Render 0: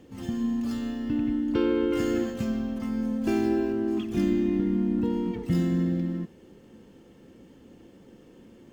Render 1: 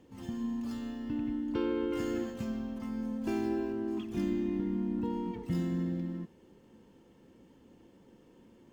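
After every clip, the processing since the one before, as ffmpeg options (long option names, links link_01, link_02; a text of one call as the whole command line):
ffmpeg -i in.wav -af "equalizer=frequency=950:width=6.1:gain=7.5,volume=-7.5dB" out.wav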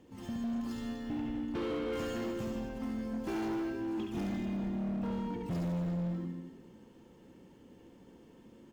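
ffmpeg -i in.wav -filter_complex "[0:a]asplit=2[link_01][link_02];[link_02]aecho=0:1:70|150.5|243.1|349.5|472:0.631|0.398|0.251|0.158|0.1[link_03];[link_01][link_03]amix=inputs=2:normalize=0,asoftclip=type=hard:threshold=-32dB" out.wav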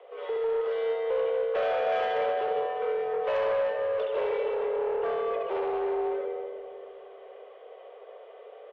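ffmpeg -i in.wav -filter_complex "[0:a]highpass=frequency=200:width_type=q:width=0.5412,highpass=frequency=200:width_type=q:width=1.307,lowpass=frequency=3000:width_type=q:width=0.5176,lowpass=frequency=3000:width_type=q:width=0.7071,lowpass=frequency=3000:width_type=q:width=1.932,afreqshift=220,aeval=exprs='0.0501*(cos(1*acos(clip(val(0)/0.0501,-1,1)))-cos(1*PI/2))+0.00316*(cos(5*acos(clip(val(0)/0.0501,-1,1)))-cos(5*PI/2))':channel_layout=same,asplit=2[link_01][link_02];[link_02]adelay=315,lowpass=frequency=950:poles=1,volume=-10.5dB,asplit=2[link_03][link_04];[link_04]adelay=315,lowpass=frequency=950:poles=1,volume=0.55,asplit=2[link_05][link_06];[link_06]adelay=315,lowpass=frequency=950:poles=1,volume=0.55,asplit=2[link_07][link_08];[link_08]adelay=315,lowpass=frequency=950:poles=1,volume=0.55,asplit=2[link_09][link_10];[link_10]adelay=315,lowpass=frequency=950:poles=1,volume=0.55,asplit=2[link_11][link_12];[link_12]adelay=315,lowpass=frequency=950:poles=1,volume=0.55[link_13];[link_01][link_03][link_05][link_07][link_09][link_11][link_13]amix=inputs=7:normalize=0,volume=7.5dB" out.wav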